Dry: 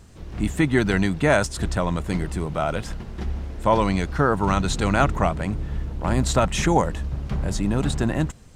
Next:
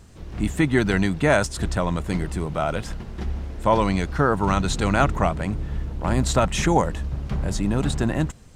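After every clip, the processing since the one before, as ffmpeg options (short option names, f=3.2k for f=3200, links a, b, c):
-af anull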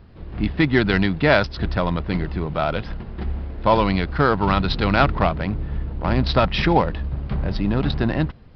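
-af "adynamicsmooth=sensitivity=2.5:basefreq=2.1k,aresample=11025,aresample=44100,aemphasis=mode=production:type=75fm,volume=2.5dB"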